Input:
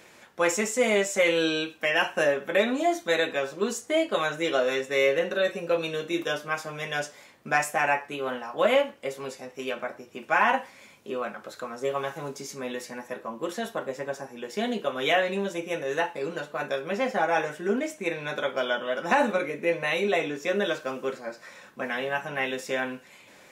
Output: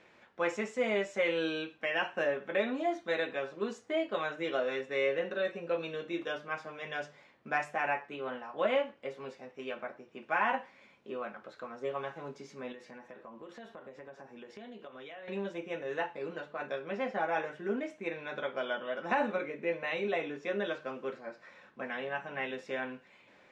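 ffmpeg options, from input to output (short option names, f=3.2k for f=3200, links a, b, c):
-filter_complex "[0:a]asettb=1/sr,asplit=3[a][b][c];[a]atrim=end=12.724[d];[b]atrim=start=12.72:end=15.28,asetpts=PTS-STARTPTS,afade=t=in:d=0.004:c=qsin,afade=t=out:st=2.556:d=0.004:c=qsin,acompressor=threshold=-37dB:ratio=6:attack=3.2:release=140:knee=1:detection=peak[e];[c]atrim=start=15.276[f];[d][e]acrossfade=d=0.004:c1=hsin:c2=qsin[g];[g][f]acrossfade=d=0.004:c1=qsin:c2=hsin,lowpass=3.3k,bandreject=f=50:t=h:w=6,bandreject=f=100:t=h:w=6,bandreject=f=150:t=h:w=6,volume=-7.5dB"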